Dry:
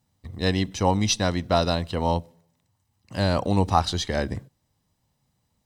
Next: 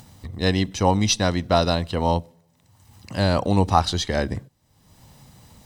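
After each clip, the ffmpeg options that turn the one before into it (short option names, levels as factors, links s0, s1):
-af "acompressor=mode=upward:threshold=0.02:ratio=2.5,volume=1.33"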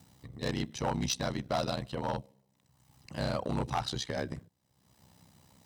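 -af "aeval=exprs='val(0)*sin(2*PI*32*n/s)':c=same,asoftclip=type=hard:threshold=0.15,highpass=83,volume=0.422"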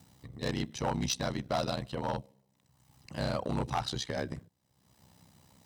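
-af anull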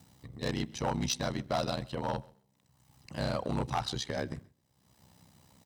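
-af "aecho=1:1:132|264:0.0631|0.0101"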